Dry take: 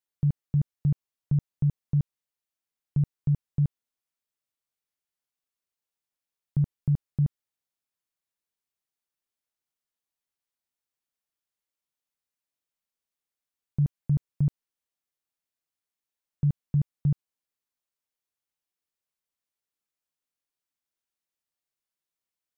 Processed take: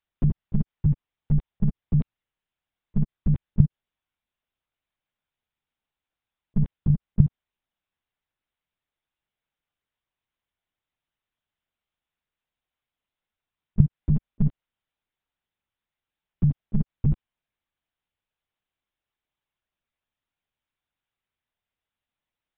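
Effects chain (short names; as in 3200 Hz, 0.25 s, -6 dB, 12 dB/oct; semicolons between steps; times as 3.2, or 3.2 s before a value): compressor, threshold -23 dBFS, peak gain reduction 3.5 dB; monotone LPC vocoder at 8 kHz 210 Hz; gain +6.5 dB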